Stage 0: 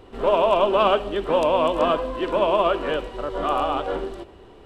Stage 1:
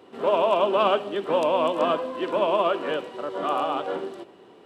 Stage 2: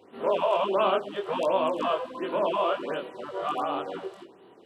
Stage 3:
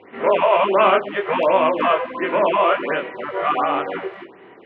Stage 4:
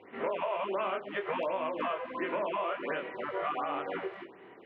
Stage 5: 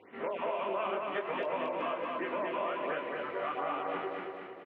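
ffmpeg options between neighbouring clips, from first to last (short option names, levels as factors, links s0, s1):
-af "highpass=f=150:w=0.5412,highpass=f=150:w=1.3066,volume=0.75"
-af "flanger=delay=20:depth=6.2:speed=0.56,afftfilt=real='re*(1-between(b*sr/1024,220*pow(6700/220,0.5+0.5*sin(2*PI*1.4*pts/sr))/1.41,220*pow(6700/220,0.5+0.5*sin(2*PI*1.4*pts/sr))*1.41))':imag='im*(1-between(b*sr/1024,220*pow(6700/220,0.5+0.5*sin(2*PI*1.4*pts/sr))/1.41,220*pow(6700/220,0.5+0.5*sin(2*PI*1.4*pts/sr))*1.41))':win_size=1024:overlap=0.75"
-af "lowpass=f=2100:t=q:w=4.6,volume=2.37"
-af "acompressor=threshold=0.0794:ratio=6,volume=0.398"
-af "aecho=1:1:227|454|681|908|1135|1362|1589:0.708|0.354|0.177|0.0885|0.0442|0.0221|0.0111,volume=0.708"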